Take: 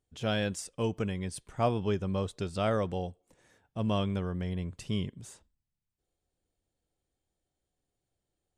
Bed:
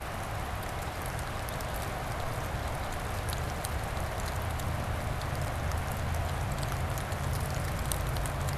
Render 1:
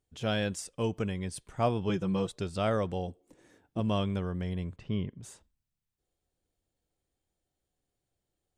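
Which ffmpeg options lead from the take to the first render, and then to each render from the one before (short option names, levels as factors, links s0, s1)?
-filter_complex "[0:a]asettb=1/sr,asplit=3[s0][s1][s2];[s0]atrim=end=1.894[s3];[s1]atrim=start=1.89:end=2.32,asetpts=PTS-STARTPTS,afade=t=in:d=0.004:c=qsin,afade=t=out:st=0.426:d=0.004:c=qsin,aecho=1:1:6:0.81,atrim=end_sample=18963[s4];[s2]atrim=start=2.316[s5];[s3][s4]acrossfade=d=0.004:c1=hsin:c2=qsin[s6];[s6][s5]acrossfade=d=0.004:c1=qsin:c2=hsin,asettb=1/sr,asplit=3[s7][s8][s9];[s7]atrim=end=3.084[s10];[s8]atrim=start=3.08:end=3.8,asetpts=PTS-STARTPTS,afade=t=in:d=0.004:c=qsin,afade=t=out:st=0.716:d=0.004:c=qsin,equalizer=f=310:w=1.5:g=11.5[s11];[s9]atrim=start=3.796[s12];[s10][s11]acrossfade=d=0.004:c1=hsin:c2=qsin[s13];[s13][s12]acrossfade=d=0.004:c1=qsin:c2=hsin,asettb=1/sr,asplit=3[s14][s15][s16];[s14]atrim=end=4.764[s17];[s15]atrim=start=4.76:end=5.23,asetpts=PTS-STARTPTS,afade=t=in:d=0.004:c=qsin,afade=t=out:st=0.466:d=0.004:c=qsin,lowpass=2200[s18];[s16]atrim=start=5.226[s19];[s17][s18]acrossfade=d=0.004:c1=hsin:c2=qsin[s20];[s20][s19]acrossfade=d=0.004:c1=qsin:c2=hsin"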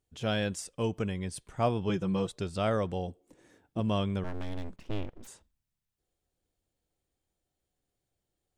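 -filter_complex "[0:a]asplit=3[s0][s1][s2];[s0]afade=t=out:st=4.23:d=0.02[s3];[s1]aeval=exprs='abs(val(0))':c=same,afade=t=in:st=4.23:d=0.02,afade=t=out:st=5.26:d=0.02[s4];[s2]afade=t=in:st=5.26:d=0.02[s5];[s3][s4][s5]amix=inputs=3:normalize=0"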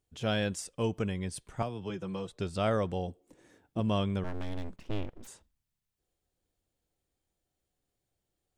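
-filter_complex "[0:a]asettb=1/sr,asplit=3[s0][s1][s2];[s0]atrim=end=1.624[s3];[s1]atrim=start=1.62:end=2.4,asetpts=PTS-STARTPTS,afade=t=in:d=0.004:c=qsin,afade=t=out:st=0.776:d=0.004:c=qsin,acrossover=split=110|310|3000[s4][s5][s6][s7];[s4]acompressor=threshold=0.00251:ratio=3[s8];[s5]acompressor=threshold=0.00631:ratio=3[s9];[s6]acompressor=threshold=0.0112:ratio=3[s10];[s7]acompressor=threshold=0.00141:ratio=3[s11];[s8][s9][s10][s11]amix=inputs=4:normalize=0[s12];[s2]atrim=start=2.396[s13];[s3][s12]acrossfade=d=0.004:c1=hsin:c2=qsin[s14];[s14][s13]acrossfade=d=0.004:c1=qsin:c2=hsin"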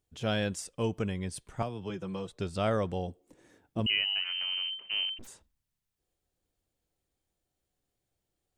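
-filter_complex "[0:a]asettb=1/sr,asplit=3[s0][s1][s2];[s0]atrim=end=3.864[s3];[s1]atrim=start=3.86:end=5.19,asetpts=PTS-STARTPTS,afade=t=in:d=0.004:c=qsin,afade=t=out:st=1.326:d=0.004:c=qsin,lowpass=f=2600:t=q:w=0.5098,lowpass=f=2600:t=q:w=0.6013,lowpass=f=2600:t=q:w=0.9,lowpass=f=2600:t=q:w=2.563,afreqshift=-3100[s4];[s2]atrim=start=5.186[s5];[s3][s4]acrossfade=d=0.004:c1=hsin:c2=qsin[s6];[s6][s5]acrossfade=d=0.004:c1=qsin:c2=hsin"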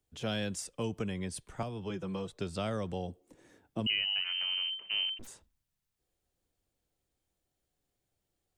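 -filter_complex "[0:a]acrossover=split=140|810[s0][s1][s2];[s0]alimiter=level_in=7.94:limit=0.0631:level=0:latency=1,volume=0.126[s3];[s3][s1][s2]amix=inputs=3:normalize=0,acrossover=split=220|3000[s4][s5][s6];[s5]acompressor=threshold=0.02:ratio=6[s7];[s4][s7][s6]amix=inputs=3:normalize=0"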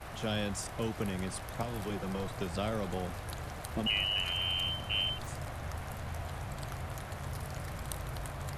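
-filter_complex "[1:a]volume=0.422[s0];[0:a][s0]amix=inputs=2:normalize=0"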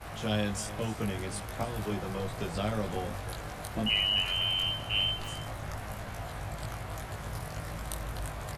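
-filter_complex "[0:a]asplit=2[s0][s1];[s1]adelay=19,volume=0.794[s2];[s0][s2]amix=inputs=2:normalize=0,aecho=1:1:307:0.158"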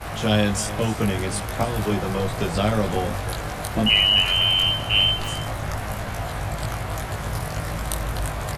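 -af "volume=3.35"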